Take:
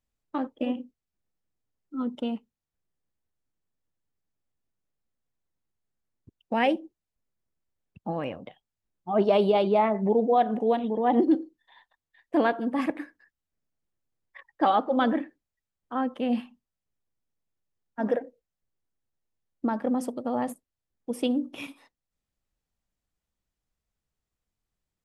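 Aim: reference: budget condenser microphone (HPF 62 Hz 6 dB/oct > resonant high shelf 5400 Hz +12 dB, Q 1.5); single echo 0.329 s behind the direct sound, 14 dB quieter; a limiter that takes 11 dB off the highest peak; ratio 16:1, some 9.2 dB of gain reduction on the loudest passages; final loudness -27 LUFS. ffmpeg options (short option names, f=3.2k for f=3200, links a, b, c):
-af "acompressor=threshold=-26dB:ratio=16,alimiter=level_in=5dB:limit=-24dB:level=0:latency=1,volume=-5dB,highpass=f=62:p=1,highshelf=f=5.4k:t=q:w=1.5:g=12,aecho=1:1:329:0.2,volume=11.5dB"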